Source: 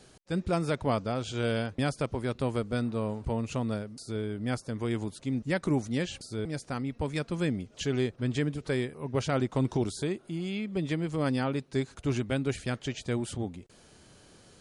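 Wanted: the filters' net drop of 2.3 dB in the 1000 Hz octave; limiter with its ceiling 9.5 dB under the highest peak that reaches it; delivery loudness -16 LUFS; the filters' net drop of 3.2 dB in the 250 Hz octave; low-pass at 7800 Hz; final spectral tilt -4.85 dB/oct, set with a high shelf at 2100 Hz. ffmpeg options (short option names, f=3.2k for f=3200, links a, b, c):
-af "lowpass=7.8k,equalizer=f=250:t=o:g=-4,equalizer=f=1k:t=o:g=-5,highshelf=f=2.1k:g=7.5,volume=20.5dB,alimiter=limit=-6dB:level=0:latency=1"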